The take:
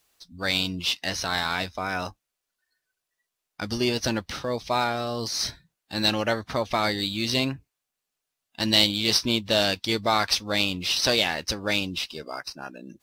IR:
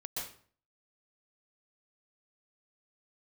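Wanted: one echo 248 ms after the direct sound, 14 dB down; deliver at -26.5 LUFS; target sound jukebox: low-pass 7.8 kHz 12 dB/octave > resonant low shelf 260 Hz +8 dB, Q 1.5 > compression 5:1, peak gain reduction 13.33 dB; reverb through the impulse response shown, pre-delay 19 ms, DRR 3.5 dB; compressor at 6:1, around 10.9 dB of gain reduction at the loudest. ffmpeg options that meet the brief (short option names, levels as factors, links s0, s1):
-filter_complex "[0:a]acompressor=threshold=0.0447:ratio=6,aecho=1:1:248:0.2,asplit=2[s0][s1];[1:a]atrim=start_sample=2205,adelay=19[s2];[s1][s2]afir=irnorm=-1:irlink=0,volume=0.596[s3];[s0][s3]amix=inputs=2:normalize=0,lowpass=7800,lowshelf=f=260:t=q:w=1.5:g=8,acompressor=threshold=0.02:ratio=5,volume=3.35"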